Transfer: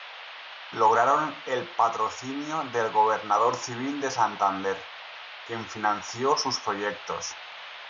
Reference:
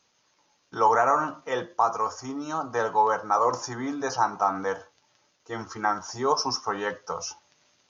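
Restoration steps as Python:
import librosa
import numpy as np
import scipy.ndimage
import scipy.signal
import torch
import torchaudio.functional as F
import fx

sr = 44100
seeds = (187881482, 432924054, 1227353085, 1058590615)

y = fx.noise_reduce(x, sr, print_start_s=0.11, print_end_s=0.61, reduce_db=25.0)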